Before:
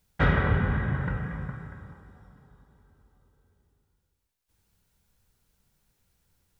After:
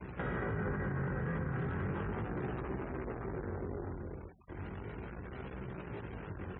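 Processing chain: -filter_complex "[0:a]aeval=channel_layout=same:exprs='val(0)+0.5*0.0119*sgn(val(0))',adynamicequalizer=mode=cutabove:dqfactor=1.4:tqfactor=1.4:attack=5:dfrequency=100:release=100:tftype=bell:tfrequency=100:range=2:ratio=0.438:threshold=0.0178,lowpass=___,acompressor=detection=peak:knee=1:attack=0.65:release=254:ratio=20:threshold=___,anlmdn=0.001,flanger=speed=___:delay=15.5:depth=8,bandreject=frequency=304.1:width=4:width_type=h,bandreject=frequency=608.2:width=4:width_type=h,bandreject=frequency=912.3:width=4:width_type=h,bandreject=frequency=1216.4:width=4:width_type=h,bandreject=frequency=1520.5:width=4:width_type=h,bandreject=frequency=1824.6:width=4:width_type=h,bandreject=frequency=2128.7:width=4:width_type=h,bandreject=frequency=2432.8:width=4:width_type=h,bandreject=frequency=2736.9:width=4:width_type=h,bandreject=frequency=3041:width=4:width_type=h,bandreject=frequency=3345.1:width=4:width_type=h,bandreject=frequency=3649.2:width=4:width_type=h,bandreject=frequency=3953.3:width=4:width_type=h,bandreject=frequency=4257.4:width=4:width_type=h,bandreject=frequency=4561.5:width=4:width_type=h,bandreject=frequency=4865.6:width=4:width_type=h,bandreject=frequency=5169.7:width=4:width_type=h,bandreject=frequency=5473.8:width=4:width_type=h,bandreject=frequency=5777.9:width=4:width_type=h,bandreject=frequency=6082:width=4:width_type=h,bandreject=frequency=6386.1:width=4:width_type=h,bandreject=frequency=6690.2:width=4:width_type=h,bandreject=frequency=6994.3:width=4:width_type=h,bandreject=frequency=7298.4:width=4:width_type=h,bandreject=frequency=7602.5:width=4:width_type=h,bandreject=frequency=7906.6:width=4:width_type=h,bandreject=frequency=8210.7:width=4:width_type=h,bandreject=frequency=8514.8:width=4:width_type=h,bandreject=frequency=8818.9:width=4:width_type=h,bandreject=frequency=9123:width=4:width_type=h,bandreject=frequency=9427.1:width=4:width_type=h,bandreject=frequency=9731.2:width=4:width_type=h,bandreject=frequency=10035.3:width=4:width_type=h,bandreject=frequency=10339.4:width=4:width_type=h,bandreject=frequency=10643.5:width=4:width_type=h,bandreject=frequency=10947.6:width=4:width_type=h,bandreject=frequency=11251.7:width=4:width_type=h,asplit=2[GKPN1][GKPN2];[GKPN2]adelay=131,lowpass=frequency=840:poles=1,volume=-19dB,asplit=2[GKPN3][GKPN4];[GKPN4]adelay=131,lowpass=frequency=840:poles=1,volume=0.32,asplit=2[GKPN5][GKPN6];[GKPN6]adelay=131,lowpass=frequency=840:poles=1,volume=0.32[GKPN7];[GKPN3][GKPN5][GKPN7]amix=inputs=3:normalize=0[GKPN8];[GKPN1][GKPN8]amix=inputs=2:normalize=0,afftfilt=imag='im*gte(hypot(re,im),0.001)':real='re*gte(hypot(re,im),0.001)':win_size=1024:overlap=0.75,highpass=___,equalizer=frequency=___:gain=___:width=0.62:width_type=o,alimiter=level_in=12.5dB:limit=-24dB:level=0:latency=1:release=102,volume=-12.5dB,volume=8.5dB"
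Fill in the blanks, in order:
2300, -28dB, 0.36, 73, 370, 8.5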